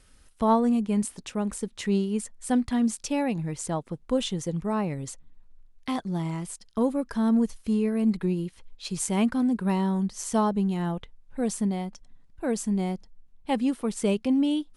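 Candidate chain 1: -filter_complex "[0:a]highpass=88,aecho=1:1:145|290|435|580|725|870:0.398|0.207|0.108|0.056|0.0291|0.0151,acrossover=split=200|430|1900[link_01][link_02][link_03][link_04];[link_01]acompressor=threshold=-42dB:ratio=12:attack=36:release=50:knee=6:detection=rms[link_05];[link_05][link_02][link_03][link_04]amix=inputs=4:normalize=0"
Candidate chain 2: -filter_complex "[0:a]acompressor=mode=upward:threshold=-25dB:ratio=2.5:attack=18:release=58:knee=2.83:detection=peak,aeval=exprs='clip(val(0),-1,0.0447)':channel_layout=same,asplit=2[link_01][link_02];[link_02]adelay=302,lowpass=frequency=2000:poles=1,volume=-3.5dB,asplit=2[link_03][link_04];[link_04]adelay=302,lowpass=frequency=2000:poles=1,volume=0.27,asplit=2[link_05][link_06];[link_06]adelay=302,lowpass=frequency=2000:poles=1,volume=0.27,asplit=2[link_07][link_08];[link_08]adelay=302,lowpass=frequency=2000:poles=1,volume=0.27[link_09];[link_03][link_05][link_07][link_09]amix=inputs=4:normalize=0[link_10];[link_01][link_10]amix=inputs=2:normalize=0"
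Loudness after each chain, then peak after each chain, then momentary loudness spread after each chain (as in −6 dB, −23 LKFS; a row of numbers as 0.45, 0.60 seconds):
−28.5, −26.5 LKFS; −9.0, −11.5 dBFS; 10, 6 LU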